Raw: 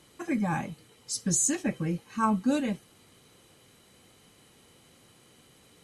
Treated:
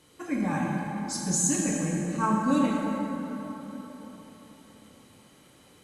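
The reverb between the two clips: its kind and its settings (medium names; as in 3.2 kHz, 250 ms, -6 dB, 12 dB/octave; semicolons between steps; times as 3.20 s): plate-style reverb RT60 4.2 s, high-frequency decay 0.45×, DRR -3 dB; trim -2.5 dB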